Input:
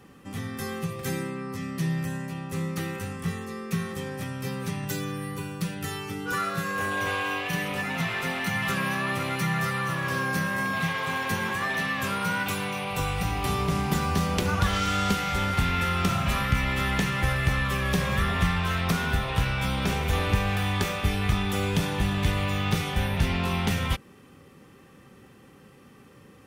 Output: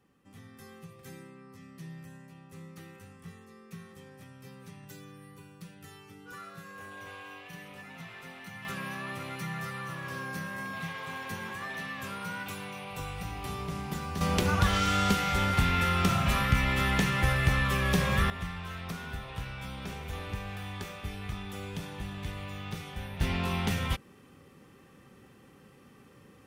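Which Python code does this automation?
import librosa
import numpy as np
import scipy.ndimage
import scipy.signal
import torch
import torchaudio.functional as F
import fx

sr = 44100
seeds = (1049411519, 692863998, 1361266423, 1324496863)

y = fx.gain(x, sr, db=fx.steps((0.0, -17.0), (8.65, -10.0), (14.21, -1.0), (18.3, -13.0), (23.21, -4.0)))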